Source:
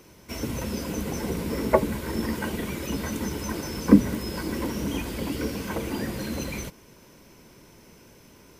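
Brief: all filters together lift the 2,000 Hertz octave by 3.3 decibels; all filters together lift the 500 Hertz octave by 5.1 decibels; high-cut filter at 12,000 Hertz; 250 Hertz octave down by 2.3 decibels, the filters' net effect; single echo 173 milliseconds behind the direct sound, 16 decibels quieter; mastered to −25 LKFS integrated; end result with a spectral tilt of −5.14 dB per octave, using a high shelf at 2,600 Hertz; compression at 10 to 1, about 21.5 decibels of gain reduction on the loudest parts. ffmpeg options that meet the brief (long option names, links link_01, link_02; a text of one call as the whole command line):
ffmpeg -i in.wav -af "lowpass=12000,equalizer=frequency=250:width_type=o:gain=-5,equalizer=frequency=500:width_type=o:gain=7.5,equalizer=frequency=2000:width_type=o:gain=5.5,highshelf=frequency=2600:gain=-4,acompressor=threshold=-32dB:ratio=10,aecho=1:1:173:0.158,volume=11.5dB" out.wav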